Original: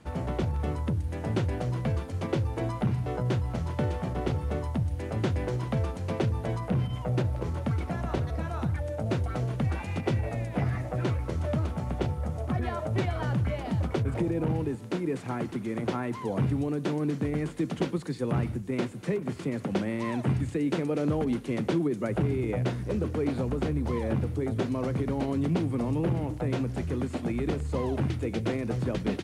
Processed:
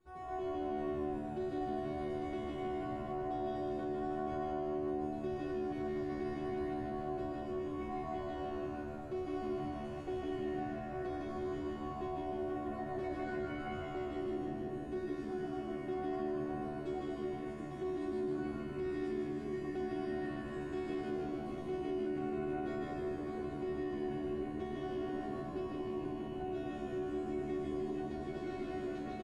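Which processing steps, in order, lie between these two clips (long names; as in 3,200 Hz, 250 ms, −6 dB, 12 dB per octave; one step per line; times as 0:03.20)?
high-shelf EQ 2,400 Hz −9.5 dB
tuned comb filter 370 Hz, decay 0.7 s, mix 100%
comb and all-pass reverb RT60 2.4 s, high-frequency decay 0.6×, pre-delay 85 ms, DRR −1 dB
brickwall limiter −41.5 dBFS, peak gain reduction 9.5 dB
echo with shifted repeats 154 ms, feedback 56%, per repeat −76 Hz, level −4.5 dB
level +8.5 dB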